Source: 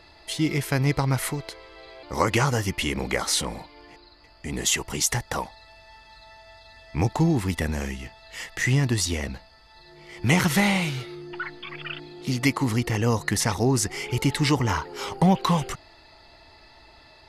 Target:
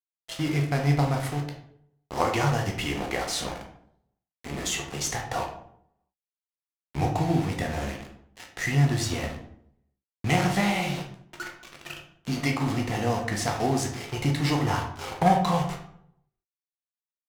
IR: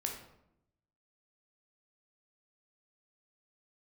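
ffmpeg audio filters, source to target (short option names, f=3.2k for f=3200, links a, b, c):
-filter_complex "[0:a]equalizer=f=720:w=6.7:g=14,asplit=2[a][b];[b]alimiter=limit=-15.5dB:level=0:latency=1:release=451,volume=-2.5dB[c];[a][c]amix=inputs=2:normalize=0,aeval=exprs='val(0)*gte(abs(val(0)),0.0596)':c=same,adynamicsmooth=sensitivity=8:basefreq=1.9k,aeval=exprs='0.596*(cos(1*acos(clip(val(0)/0.596,-1,1)))-cos(1*PI/2))+0.106*(cos(3*acos(clip(val(0)/0.596,-1,1)))-cos(3*PI/2))+0.0266*(cos(5*acos(clip(val(0)/0.596,-1,1)))-cos(5*PI/2))':c=same[d];[1:a]atrim=start_sample=2205,asetrate=57330,aresample=44100[e];[d][e]afir=irnorm=-1:irlink=0,volume=-2.5dB"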